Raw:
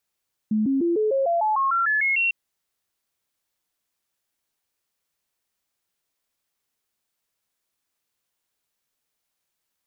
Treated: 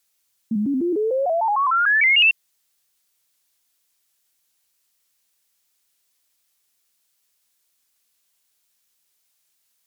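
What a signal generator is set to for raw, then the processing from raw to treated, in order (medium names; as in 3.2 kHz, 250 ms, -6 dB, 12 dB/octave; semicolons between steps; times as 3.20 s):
stepped sine 215 Hz up, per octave 3, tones 12, 0.15 s, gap 0.00 s -18.5 dBFS
treble shelf 2.2 kHz +12 dB; de-hum 88.36 Hz, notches 2; vibrato with a chosen wave saw up 5.4 Hz, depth 100 cents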